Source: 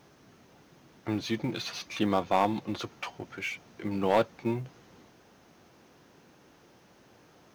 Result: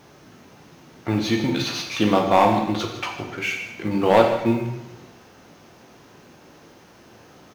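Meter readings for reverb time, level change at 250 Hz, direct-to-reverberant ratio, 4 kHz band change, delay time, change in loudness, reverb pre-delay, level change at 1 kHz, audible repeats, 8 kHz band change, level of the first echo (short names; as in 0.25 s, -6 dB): 0.90 s, +9.5 dB, 1.5 dB, +9.5 dB, 0.153 s, +10.0 dB, 12 ms, +9.5 dB, 1, +9.5 dB, -13.5 dB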